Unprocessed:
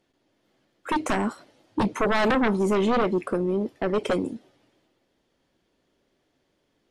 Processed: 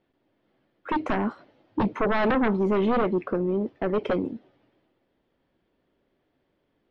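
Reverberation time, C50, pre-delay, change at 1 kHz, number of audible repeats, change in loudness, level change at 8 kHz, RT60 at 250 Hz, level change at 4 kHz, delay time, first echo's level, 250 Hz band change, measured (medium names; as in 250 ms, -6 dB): no reverb, no reverb, no reverb, -1.5 dB, no echo, -1.0 dB, under -20 dB, no reverb, -6.5 dB, no echo, no echo, -0.5 dB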